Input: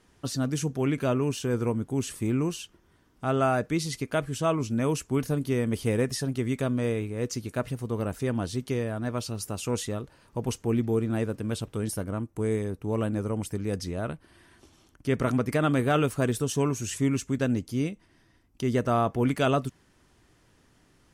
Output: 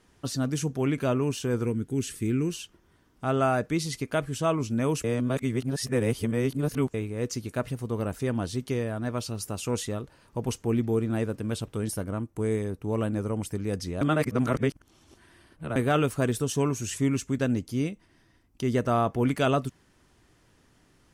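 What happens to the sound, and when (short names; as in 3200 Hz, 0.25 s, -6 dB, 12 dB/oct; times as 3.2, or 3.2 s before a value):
1.65–2.53 band shelf 810 Hz -11 dB 1.3 oct
5.04–6.94 reverse
14.01–15.76 reverse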